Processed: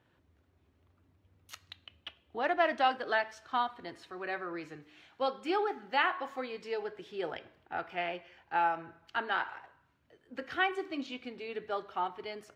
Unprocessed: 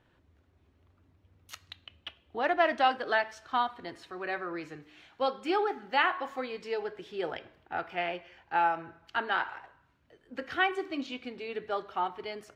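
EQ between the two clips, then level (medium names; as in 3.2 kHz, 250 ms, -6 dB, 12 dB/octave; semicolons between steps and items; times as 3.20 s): high-pass 61 Hz; -2.5 dB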